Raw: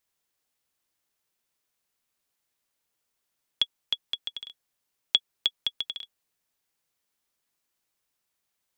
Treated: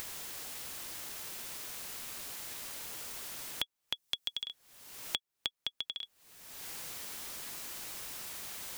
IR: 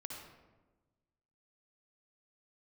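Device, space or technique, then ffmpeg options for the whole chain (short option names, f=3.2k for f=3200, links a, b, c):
upward and downward compression: -filter_complex "[0:a]acompressor=mode=upward:threshold=-31dB:ratio=2.5,acompressor=threshold=-48dB:ratio=4,asettb=1/sr,asplit=3[a][b][c];[a]atrim=end=3.944[d];[b]atrim=start=3.94:end=4.44,asetpts=PTS-STARTPTS,afade=t=in:d=0.004:c=qsin,afade=t=out:st=0.496:d=0.004:c=qsin,bass=f=250:g=2,treble=f=4k:g=8[e];[c]atrim=start=4.436[f];[d][e]acrossfade=d=0.004:c1=hsin:c2=qsin[g];[g][f]acrossfade=d=0.004:c1=qsin:c2=hsin,volume=10.5dB"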